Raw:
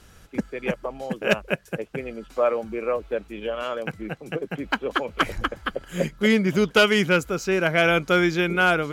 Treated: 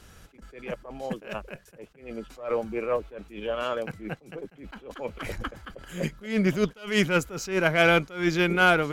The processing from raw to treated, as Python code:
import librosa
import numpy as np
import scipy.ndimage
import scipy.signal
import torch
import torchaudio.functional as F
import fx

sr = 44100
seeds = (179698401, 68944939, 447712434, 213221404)

y = fx.cheby_harmonics(x, sr, harmonics=(4,), levels_db=(-25,), full_scale_db=-9.0)
y = fx.attack_slew(y, sr, db_per_s=140.0)